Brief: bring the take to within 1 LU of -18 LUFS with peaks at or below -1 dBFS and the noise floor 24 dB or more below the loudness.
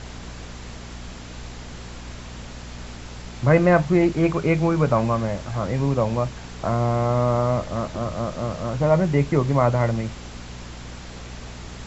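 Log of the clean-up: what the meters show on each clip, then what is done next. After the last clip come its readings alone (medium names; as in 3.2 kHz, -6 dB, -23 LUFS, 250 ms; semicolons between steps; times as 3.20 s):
hum 60 Hz; highest harmonic 240 Hz; hum level -36 dBFS; noise floor -38 dBFS; noise floor target -46 dBFS; loudness -21.5 LUFS; peak level -4.5 dBFS; loudness target -18.0 LUFS
-> de-hum 60 Hz, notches 4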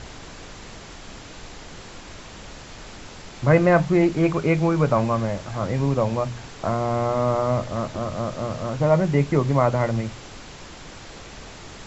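hum not found; noise floor -41 dBFS; noise floor target -46 dBFS
-> noise print and reduce 6 dB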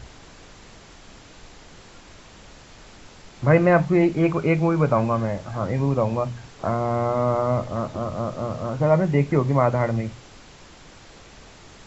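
noise floor -47 dBFS; loudness -22.0 LUFS; peak level -3.5 dBFS; loudness target -18.0 LUFS
-> trim +4 dB; peak limiter -1 dBFS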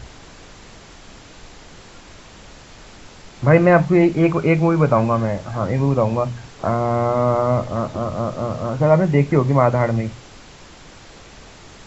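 loudness -18.0 LUFS; peak level -1.0 dBFS; noise floor -43 dBFS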